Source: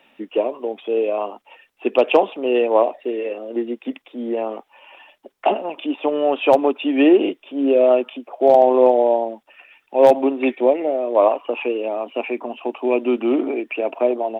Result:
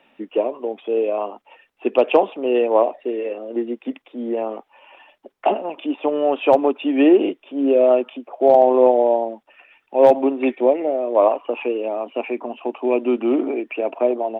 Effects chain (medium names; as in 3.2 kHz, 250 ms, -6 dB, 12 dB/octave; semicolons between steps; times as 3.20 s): treble shelf 3.3 kHz -8.5 dB